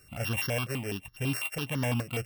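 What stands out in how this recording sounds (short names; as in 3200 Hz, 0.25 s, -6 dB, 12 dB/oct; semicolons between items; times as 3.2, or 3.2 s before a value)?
a buzz of ramps at a fixed pitch in blocks of 16 samples; notches that jump at a steady rate 12 Hz 890–2500 Hz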